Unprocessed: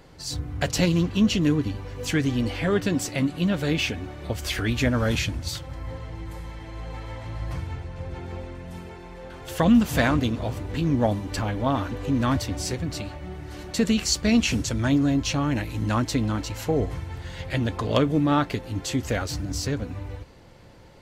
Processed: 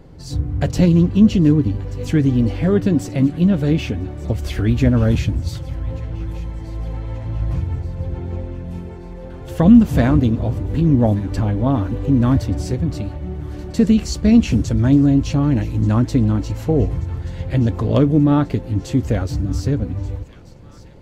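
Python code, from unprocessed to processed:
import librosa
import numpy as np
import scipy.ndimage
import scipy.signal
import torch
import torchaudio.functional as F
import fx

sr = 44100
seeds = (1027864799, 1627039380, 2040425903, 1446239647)

y = fx.tilt_shelf(x, sr, db=8.0, hz=650.0)
y = fx.echo_wet_highpass(y, sr, ms=1182, feedback_pct=58, hz=1500.0, wet_db=-17.5)
y = F.gain(torch.from_numpy(y), 2.5).numpy()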